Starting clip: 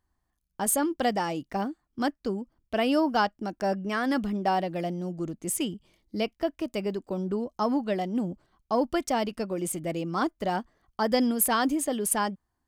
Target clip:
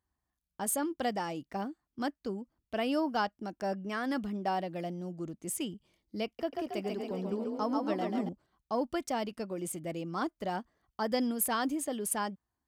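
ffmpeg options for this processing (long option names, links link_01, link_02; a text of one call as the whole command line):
ffmpeg -i in.wav -filter_complex "[0:a]highpass=45,asettb=1/sr,asplit=3[link_01][link_02][link_03];[link_01]atrim=end=6.254[link_04];[link_02]atrim=start=6.25:end=8.29,asetpts=PTS-STARTPTS,afade=type=in:duration=0.004:curve=qsin,afade=type=out:start_time=2.036:duration=0.004:curve=qsin,asplit=9[link_05][link_06][link_07][link_08][link_09][link_10][link_11][link_12][link_13];[link_06]adelay=138,afreqshift=30,volume=-3.5dB[link_14];[link_07]adelay=276,afreqshift=60,volume=-8.2dB[link_15];[link_08]adelay=414,afreqshift=90,volume=-13dB[link_16];[link_09]adelay=552,afreqshift=120,volume=-17.7dB[link_17];[link_10]adelay=690,afreqshift=150,volume=-22.4dB[link_18];[link_11]adelay=828,afreqshift=180,volume=-27.2dB[link_19];[link_12]adelay=966,afreqshift=210,volume=-31.9dB[link_20];[link_13]adelay=1104,afreqshift=240,volume=-36.6dB[link_21];[link_05][link_14][link_15][link_16][link_17][link_18][link_19][link_20][link_21]amix=inputs=9:normalize=0,atrim=end_sample=89964[link_22];[link_03]atrim=start=8.286[link_23];[link_04][link_22]acrossfade=duration=0.004:curve1=hsin:curve2=qsin[link_24];[link_24][link_23]acrossfade=duration=0.004:curve1=qsin:curve2=hsin,volume=-6.5dB" out.wav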